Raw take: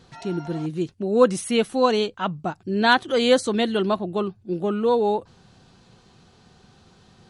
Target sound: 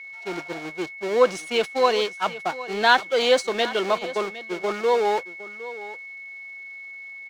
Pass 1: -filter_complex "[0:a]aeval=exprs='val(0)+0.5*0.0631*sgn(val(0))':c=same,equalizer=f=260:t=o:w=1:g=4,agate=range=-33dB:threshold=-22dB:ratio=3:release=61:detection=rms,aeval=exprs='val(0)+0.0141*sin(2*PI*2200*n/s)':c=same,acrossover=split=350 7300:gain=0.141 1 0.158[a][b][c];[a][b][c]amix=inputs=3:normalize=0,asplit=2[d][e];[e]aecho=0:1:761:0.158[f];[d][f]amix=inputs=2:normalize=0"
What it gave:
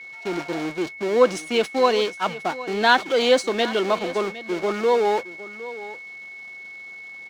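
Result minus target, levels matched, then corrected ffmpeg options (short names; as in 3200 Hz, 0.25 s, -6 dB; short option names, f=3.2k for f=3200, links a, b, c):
250 Hz band +4.5 dB
-filter_complex "[0:a]aeval=exprs='val(0)+0.5*0.0631*sgn(val(0))':c=same,equalizer=f=260:t=o:w=1:g=-2.5,agate=range=-33dB:threshold=-22dB:ratio=3:release=61:detection=rms,aeval=exprs='val(0)+0.0141*sin(2*PI*2200*n/s)':c=same,acrossover=split=350 7300:gain=0.141 1 0.158[a][b][c];[a][b][c]amix=inputs=3:normalize=0,asplit=2[d][e];[e]aecho=0:1:761:0.158[f];[d][f]amix=inputs=2:normalize=0"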